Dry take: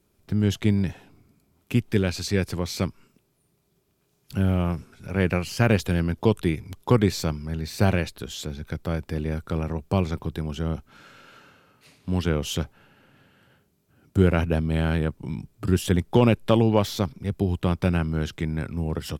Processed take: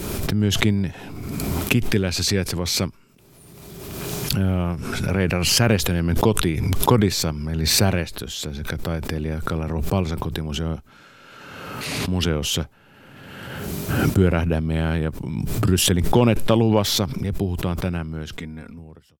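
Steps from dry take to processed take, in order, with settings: fade out at the end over 2.00 s; 18.37–18.79 s: comb 4.2 ms, depth 83%; swell ahead of each attack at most 29 dB/s; trim +1 dB

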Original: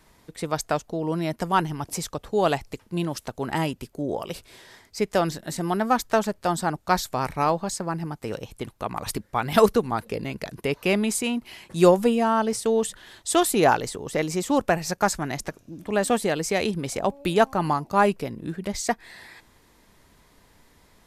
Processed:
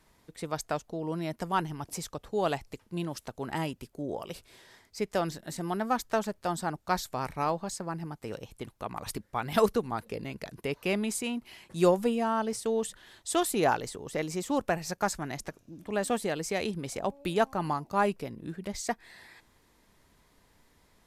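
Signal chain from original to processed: trim -7 dB; SBC 192 kbps 44.1 kHz

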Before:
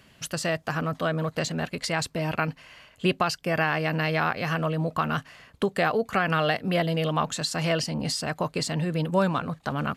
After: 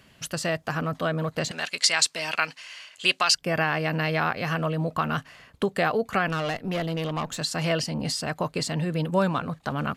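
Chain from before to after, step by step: 1.51–3.35 s: frequency weighting ITU-R 468; 6.28–7.38 s: valve stage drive 22 dB, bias 0.55

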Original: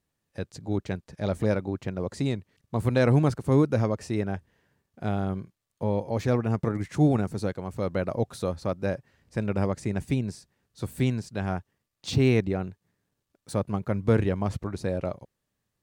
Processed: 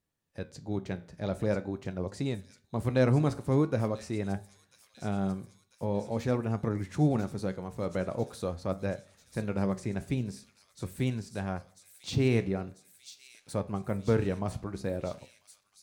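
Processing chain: flange 0.45 Hz, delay 9.2 ms, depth 8.8 ms, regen +75%; feedback echo behind a high-pass 994 ms, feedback 70%, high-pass 5.2 kHz, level -4.5 dB; on a send at -21 dB: reverberation RT60 0.55 s, pre-delay 3 ms

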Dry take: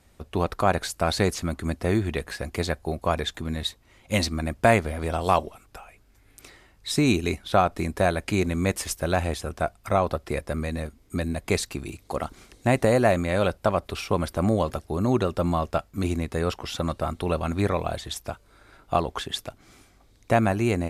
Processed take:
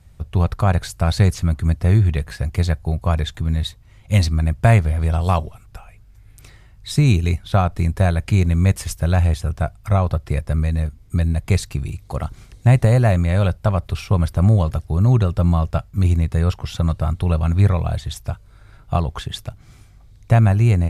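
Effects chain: resonant low shelf 190 Hz +12 dB, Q 1.5

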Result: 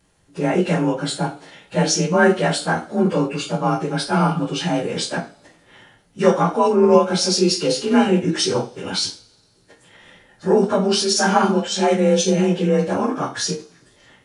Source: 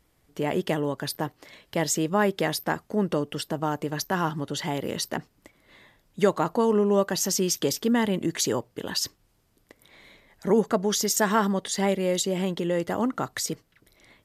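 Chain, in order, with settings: frequency axis rescaled in octaves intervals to 91%; two-slope reverb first 0.33 s, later 1.6 s, from -27 dB, DRR -0.5 dB; formant shift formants +2 st; trim +5.5 dB

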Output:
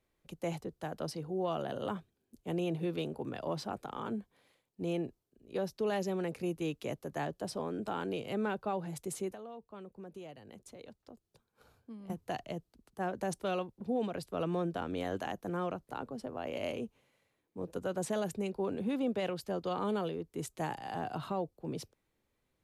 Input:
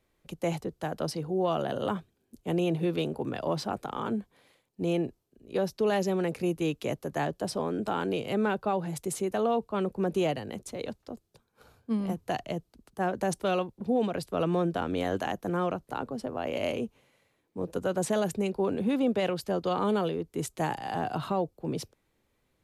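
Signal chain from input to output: 9.31–12.10 s: compression 2.5:1, threshold -45 dBFS, peak gain reduction 14.5 dB; trim -6.5 dB

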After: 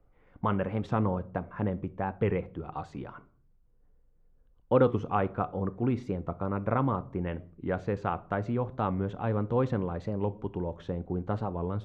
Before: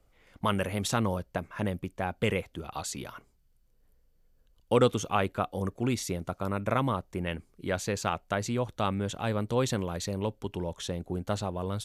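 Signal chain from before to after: low-pass 1.3 kHz 12 dB/octave; band-stop 620 Hz, Q 12; simulated room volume 560 m³, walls furnished, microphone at 0.4 m; warped record 45 rpm, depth 100 cents; trim +1 dB

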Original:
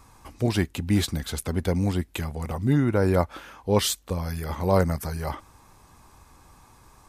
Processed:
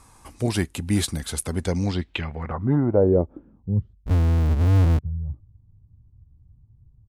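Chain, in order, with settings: resampled via 32 kHz; low-pass sweep 10 kHz -> 110 Hz, 1.53–3.89 s; 4.06–4.99 s: power-law waveshaper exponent 0.35

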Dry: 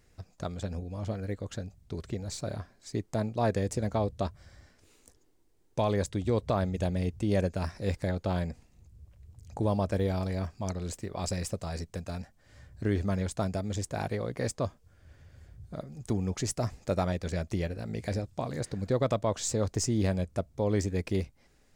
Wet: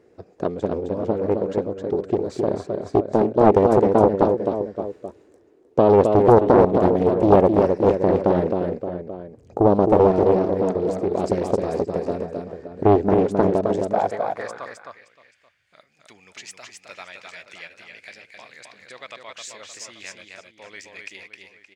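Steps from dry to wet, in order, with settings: tilt EQ -4.5 dB/octave; echo from a far wall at 98 m, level -10 dB; high-pass sweep 400 Hz -> 2.4 kHz, 13.57–14.98 s; on a send: delay 263 ms -4.5 dB; on the sum: loudspeaker Doppler distortion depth 0.68 ms; trim +6 dB

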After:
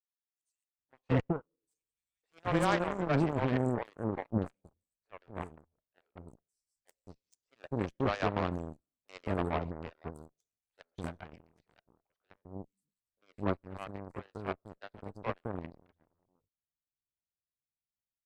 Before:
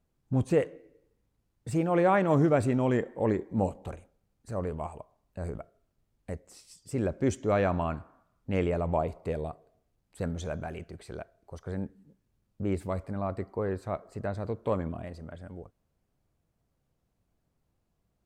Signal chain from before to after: peak limiter -18.5 dBFS, peak gain reduction 5.5 dB; three bands offset in time highs, mids, lows 570/780 ms, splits 490/4800 Hz; Chebyshev shaper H 3 -38 dB, 7 -17 dB, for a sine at -15 dBFS

